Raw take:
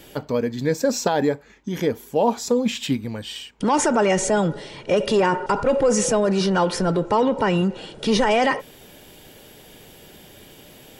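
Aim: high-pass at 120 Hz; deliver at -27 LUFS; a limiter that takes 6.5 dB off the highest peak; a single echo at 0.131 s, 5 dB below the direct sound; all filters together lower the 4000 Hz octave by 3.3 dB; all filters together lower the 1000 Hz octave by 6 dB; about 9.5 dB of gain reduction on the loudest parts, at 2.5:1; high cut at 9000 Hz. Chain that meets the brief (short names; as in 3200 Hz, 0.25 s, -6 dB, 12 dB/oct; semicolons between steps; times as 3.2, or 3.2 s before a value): HPF 120 Hz; LPF 9000 Hz; bell 1000 Hz -7.5 dB; bell 4000 Hz -4 dB; compressor 2.5:1, threshold -31 dBFS; limiter -23.5 dBFS; echo 0.131 s -5 dB; gain +5 dB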